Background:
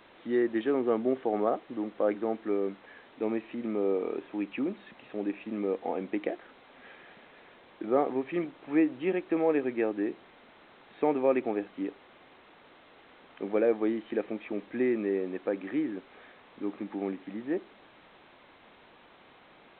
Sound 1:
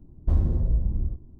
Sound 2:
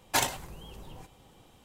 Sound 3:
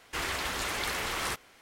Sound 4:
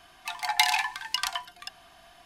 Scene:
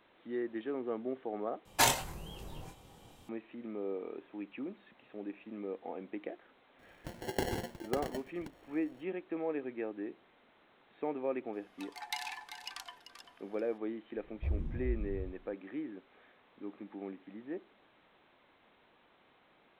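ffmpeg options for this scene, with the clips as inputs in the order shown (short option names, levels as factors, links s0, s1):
-filter_complex "[4:a]asplit=2[s0][s1];[0:a]volume=0.316[s2];[2:a]asplit=2[s3][s4];[s4]adelay=25,volume=0.596[s5];[s3][s5]amix=inputs=2:normalize=0[s6];[s0]acrusher=samples=36:mix=1:aa=0.000001[s7];[s1]aecho=1:1:390:0.299[s8];[1:a]asplit=2[s9][s10];[s10]afreqshift=-2.6[s11];[s9][s11]amix=inputs=2:normalize=1[s12];[s2]asplit=2[s13][s14];[s13]atrim=end=1.654[s15];[s6]atrim=end=1.64,asetpts=PTS-STARTPTS,volume=0.891[s16];[s14]atrim=start=3.286[s17];[s7]atrim=end=2.25,asetpts=PTS-STARTPTS,volume=0.299,afade=t=in:d=0.004:c=hsin,afade=t=out:st=2.246:d=0.004:c=hsin,adelay=6790[s18];[s8]atrim=end=2.25,asetpts=PTS-STARTPTS,volume=0.15,afade=t=in:d=0.004:c=hsin,afade=t=out:st=2.246:d=0.004:c=hsin,adelay=11530[s19];[s12]atrim=end=1.39,asetpts=PTS-STARTPTS,volume=0.282,afade=t=in:d=0.004:c=hsin,afade=t=out:st=1.386:d=0.004:c=hsin,adelay=14150[s20];[s15][s16]acrossfade=d=0.004:c1=hsin:c2=hsin[s21];[s21][s17]acrossfade=d=0.004:c1=hsin:c2=hsin[s22];[s22][s18][s19][s20]amix=inputs=4:normalize=0"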